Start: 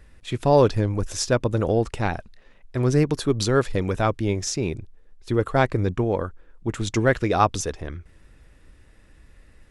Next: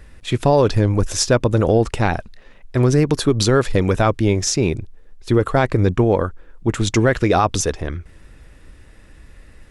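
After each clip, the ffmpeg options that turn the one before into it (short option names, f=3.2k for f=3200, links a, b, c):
-af "alimiter=limit=-13dB:level=0:latency=1:release=68,volume=7.5dB"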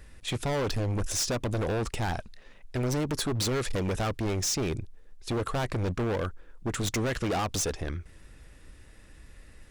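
-af "highshelf=f=3.7k:g=6,volume=19dB,asoftclip=hard,volume=-19dB,volume=-7dB"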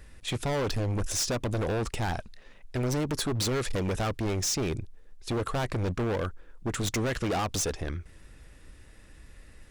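-af anull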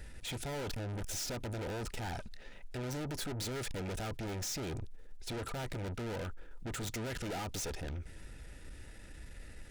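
-af "aeval=exprs='(tanh(100*val(0)+0.2)-tanh(0.2))/100':c=same,asuperstop=centerf=1100:order=12:qfactor=6.4,volume=2.5dB"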